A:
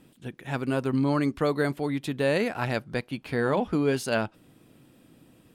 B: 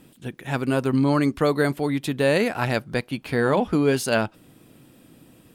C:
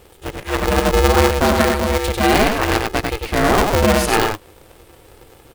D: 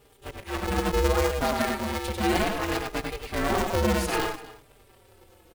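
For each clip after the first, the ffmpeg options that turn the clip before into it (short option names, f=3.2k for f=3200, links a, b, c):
-af "highshelf=f=7.7k:g=5,volume=4.5dB"
-af "aecho=1:1:96:0.668,aeval=exprs='val(0)*sgn(sin(2*PI*210*n/s))':c=same,volume=4.5dB"
-filter_complex "[0:a]aecho=1:1:247:0.133,asplit=2[a][b];[b]adelay=4.5,afreqshift=-0.65[c];[a][c]amix=inputs=2:normalize=1,volume=-7.5dB"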